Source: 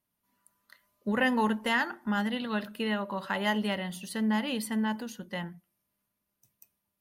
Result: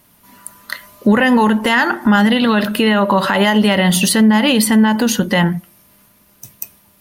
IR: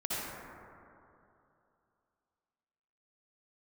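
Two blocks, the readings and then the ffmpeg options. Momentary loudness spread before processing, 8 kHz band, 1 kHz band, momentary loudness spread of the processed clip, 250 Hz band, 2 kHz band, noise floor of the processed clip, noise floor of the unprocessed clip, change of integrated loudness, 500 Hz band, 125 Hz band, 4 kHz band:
11 LU, +23.5 dB, +16.0 dB, 18 LU, +18.0 dB, +15.0 dB, −53 dBFS, −83 dBFS, +17.0 dB, +17.0 dB, +20.0 dB, +18.0 dB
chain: -af "acompressor=threshold=-40dB:ratio=3,alimiter=level_in=34dB:limit=-1dB:release=50:level=0:latency=1,volume=-3.5dB"

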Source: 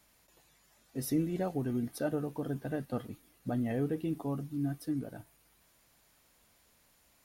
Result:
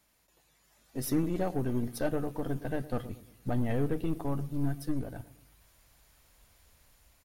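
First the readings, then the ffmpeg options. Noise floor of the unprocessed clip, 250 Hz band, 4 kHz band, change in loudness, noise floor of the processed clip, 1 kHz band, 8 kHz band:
−68 dBFS, +1.0 dB, +3.0 dB, +1.5 dB, −69 dBFS, +3.5 dB, +2.5 dB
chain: -filter_complex "[0:a]asplit=2[link_01][link_02];[link_02]adelay=113,lowpass=frequency=930:poles=1,volume=-15dB,asplit=2[link_03][link_04];[link_04]adelay=113,lowpass=frequency=930:poles=1,volume=0.48,asplit=2[link_05][link_06];[link_06]adelay=113,lowpass=frequency=930:poles=1,volume=0.48,asplit=2[link_07][link_08];[link_08]adelay=113,lowpass=frequency=930:poles=1,volume=0.48[link_09];[link_03][link_05][link_07][link_09]amix=inputs=4:normalize=0[link_10];[link_01][link_10]amix=inputs=2:normalize=0,dynaudnorm=framelen=160:gausssize=9:maxgain=6dB,aeval=exprs='0.211*(cos(1*acos(clip(val(0)/0.211,-1,1)))-cos(1*PI/2))+0.00944*(cos(8*acos(clip(val(0)/0.211,-1,1)))-cos(8*PI/2))':channel_layout=same,asubboost=boost=4.5:cutoff=94,volume=-3.5dB"

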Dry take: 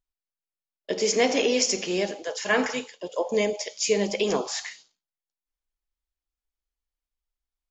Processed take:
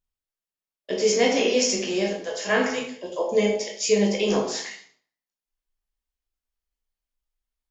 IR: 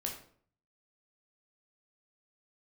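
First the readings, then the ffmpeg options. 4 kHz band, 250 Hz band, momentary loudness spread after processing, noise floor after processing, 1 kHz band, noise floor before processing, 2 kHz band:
+1.0 dB, +3.5 dB, 11 LU, below −85 dBFS, +1.0 dB, below −85 dBFS, +0.5 dB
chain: -filter_complex "[1:a]atrim=start_sample=2205[link_01];[0:a][link_01]afir=irnorm=-1:irlink=0"

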